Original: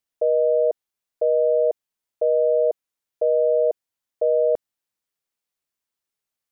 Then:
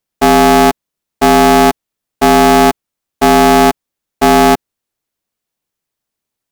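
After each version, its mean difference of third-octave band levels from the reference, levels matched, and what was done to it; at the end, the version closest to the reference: 25.5 dB: low shelf 360 Hz +10 dB; in parallel at -2 dB: level quantiser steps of 16 dB; on the sum: polarity switched at an audio rate 220 Hz; gain +3.5 dB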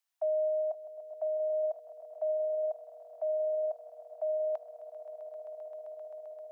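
3.0 dB: steep high-pass 650 Hz 96 dB/oct; vocal rider 2 s; swelling echo 0.131 s, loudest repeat 8, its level -14 dB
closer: second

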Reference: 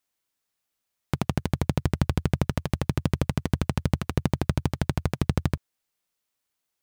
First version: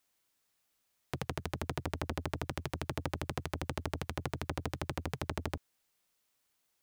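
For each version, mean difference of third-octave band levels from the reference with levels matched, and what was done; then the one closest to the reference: 6.0 dB: limiter -19.5 dBFS, peak gain reduction 11 dB; core saturation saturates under 830 Hz; gain +3.5 dB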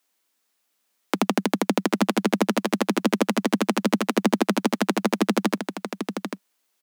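9.0 dB: steep high-pass 190 Hz 96 dB/oct; on a send: echo 0.791 s -7.5 dB; on the sum: gain +8.5 dB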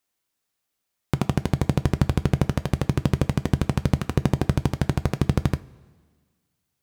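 1.0 dB: bell 260 Hz +2.5 dB 2.4 oct; two-slope reverb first 0.24 s, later 1.7 s, from -18 dB, DRR 12 dB; gain +1.5 dB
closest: third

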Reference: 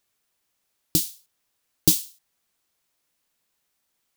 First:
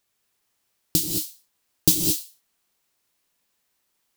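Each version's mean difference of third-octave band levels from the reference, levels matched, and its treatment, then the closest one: 13.0 dB: non-linear reverb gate 0.24 s rising, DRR 2 dB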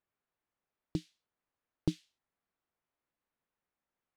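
8.5 dB: LPF 1700 Hz 12 dB/oct; gain -7.5 dB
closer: second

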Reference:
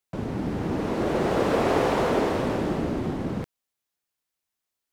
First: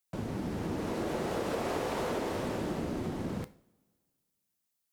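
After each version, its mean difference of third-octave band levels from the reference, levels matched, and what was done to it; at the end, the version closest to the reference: 3.5 dB: two-slope reverb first 0.48 s, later 1.9 s, from -21 dB, DRR 12.5 dB; compressor 4:1, threshold -25 dBFS, peak gain reduction 6.5 dB; high shelf 5200 Hz +10 dB; gain -5.5 dB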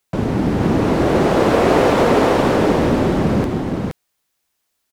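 2.0 dB: echo 0.471 s -3.5 dB; in parallel at +0.5 dB: vocal rider within 4 dB; on the sum: gain +2.5 dB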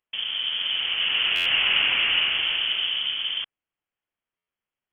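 19.0 dB: inverted band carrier 3300 Hz; dynamic EQ 1500 Hz, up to +3 dB, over -41 dBFS, Q 1.4; stuck buffer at 1.35/4.37, samples 512, times 8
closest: second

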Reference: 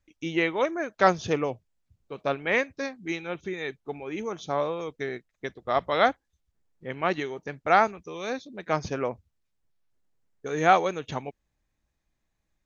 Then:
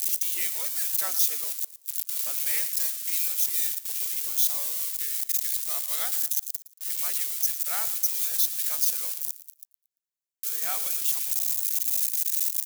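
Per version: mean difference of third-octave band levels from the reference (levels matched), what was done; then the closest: 22.5 dB: switching spikes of -14.5 dBFS; differentiator; feedback echo 0.114 s, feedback 32%, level -16 dB; gain -2 dB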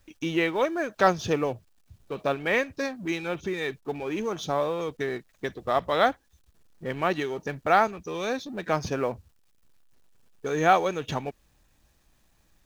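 4.5 dB: G.711 law mismatch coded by mu; notch 2100 Hz, Q 15; in parallel at -1 dB: compressor, threshold -33 dBFS, peak gain reduction 18.5 dB; on the sum: gain -2 dB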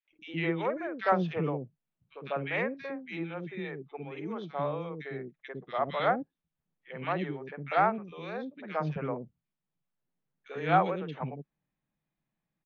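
8.0 dB: LPF 3300 Hz 24 dB/oct; resonant low shelf 110 Hz -10.5 dB, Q 3; three bands offset in time highs, mids, lows 50/110 ms, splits 420/1900 Hz; gain -4 dB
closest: second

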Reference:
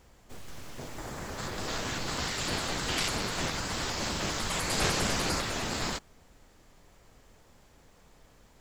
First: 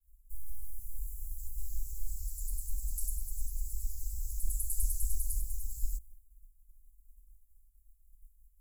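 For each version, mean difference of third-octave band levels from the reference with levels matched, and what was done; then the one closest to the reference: 26.5 dB: expander -50 dBFS; inverse Chebyshev band-stop 190–3200 Hz, stop band 70 dB; high shelf 12000 Hz -3 dB; gain +11.5 dB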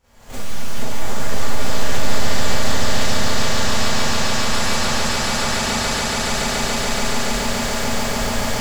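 10.5 dB: recorder AGC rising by 69 dB/s; bell 320 Hz -11 dB 0.33 oct; swelling echo 0.142 s, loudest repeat 8, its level -5 dB; Schroeder reverb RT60 0.3 s, combs from 27 ms, DRR -9 dB; gain -8.5 dB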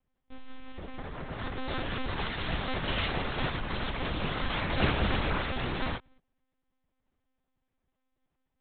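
14.0 dB: G.711 law mismatch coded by A; gate -59 dBFS, range -18 dB; low shelf 160 Hz +5 dB; monotone LPC vocoder at 8 kHz 260 Hz; gain +1.5 dB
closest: second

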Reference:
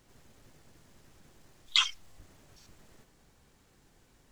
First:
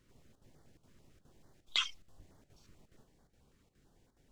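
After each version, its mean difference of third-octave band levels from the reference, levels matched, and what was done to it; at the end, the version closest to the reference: 3.0 dB: high shelf 3400 Hz -7 dB; chopper 2.4 Hz, depth 65%, duty 85%; stepped notch 9.1 Hz 770–2600 Hz; gain -3.5 dB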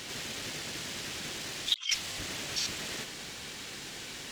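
19.0 dB: weighting filter D; negative-ratio compressor -40 dBFS, ratio -1; gain +5.5 dB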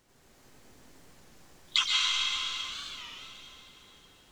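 6.5 dB: low shelf 220 Hz -6 dB; plate-style reverb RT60 3.9 s, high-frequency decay 0.9×, pre-delay 0.11 s, DRR -5.5 dB; record warp 33 1/3 rpm, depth 160 cents; gain -1.5 dB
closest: first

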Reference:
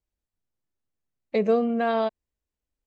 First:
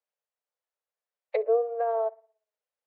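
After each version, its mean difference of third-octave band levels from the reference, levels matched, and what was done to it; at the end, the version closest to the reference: 9.5 dB: treble ducked by the level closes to 630 Hz, closed at -20.5 dBFS; steep high-pass 450 Hz 72 dB/oct; high shelf 3600 Hz -11 dB; tape echo 61 ms, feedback 46%, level -23.5 dB, low-pass 2700 Hz; gain +2 dB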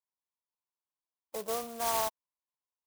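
15.0 dB: band-pass 1000 Hz, Q 6.6; clock jitter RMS 0.12 ms; gain +6 dB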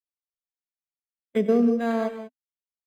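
4.5 dB: gate -24 dBFS, range -36 dB; thirty-one-band EQ 250 Hz +8 dB, 800 Hz -10 dB, 1250 Hz -4 dB, 2000 Hz +5 dB; non-linear reverb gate 0.21 s rising, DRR 8 dB; decimation joined by straight lines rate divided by 8×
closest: third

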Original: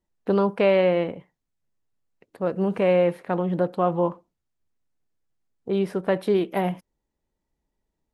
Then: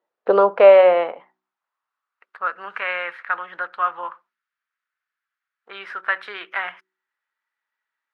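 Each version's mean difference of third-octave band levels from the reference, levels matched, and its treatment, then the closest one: 9.5 dB: LPF 3300 Hz 12 dB/oct; bell 1300 Hz +7.5 dB 0.64 oct; de-hum 62.65 Hz, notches 6; high-pass sweep 510 Hz -> 1600 Hz, 0.32–2.75; gain +3.5 dB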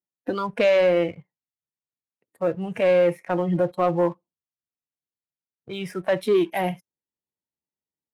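4.0 dB: HPF 83 Hz 24 dB/oct; spectral noise reduction 17 dB; dynamic EQ 820 Hz, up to -4 dB, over -34 dBFS, Q 0.95; sample leveller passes 1; gain +2 dB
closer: second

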